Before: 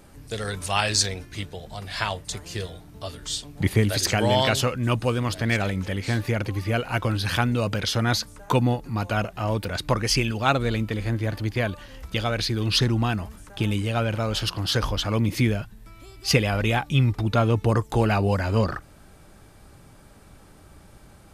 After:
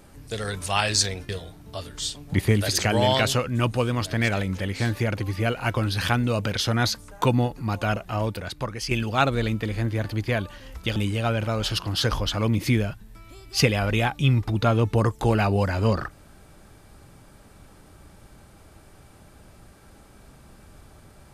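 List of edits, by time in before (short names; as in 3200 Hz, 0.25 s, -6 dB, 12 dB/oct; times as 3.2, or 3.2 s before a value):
1.29–2.57 cut
9.46–10.19 fade out quadratic, to -9 dB
12.24–13.67 cut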